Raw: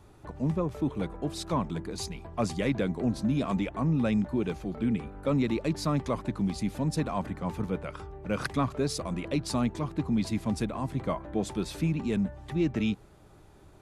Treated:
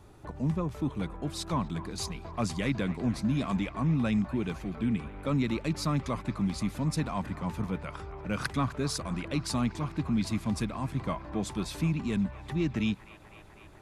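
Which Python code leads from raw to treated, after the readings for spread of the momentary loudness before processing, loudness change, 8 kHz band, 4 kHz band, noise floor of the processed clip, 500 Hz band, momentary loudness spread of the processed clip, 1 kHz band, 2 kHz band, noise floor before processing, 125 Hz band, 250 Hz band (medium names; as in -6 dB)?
6 LU, -1.0 dB, +1.0 dB, +1.0 dB, -52 dBFS, -5.0 dB, 6 LU, -1.0 dB, +1.0 dB, -54 dBFS, 0.0 dB, -1.5 dB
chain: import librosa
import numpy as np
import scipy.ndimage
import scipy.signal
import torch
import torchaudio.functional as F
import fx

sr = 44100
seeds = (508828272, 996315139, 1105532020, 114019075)

y = fx.dynamic_eq(x, sr, hz=490.0, q=0.93, threshold_db=-43.0, ratio=4.0, max_db=-7)
y = fx.echo_wet_bandpass(y, sr, ms=251, feedback_pct=82, hz=1300.0, wet_db=-14.0)
y = F.gain(torch.from_numpy(y), 1.0).numpy()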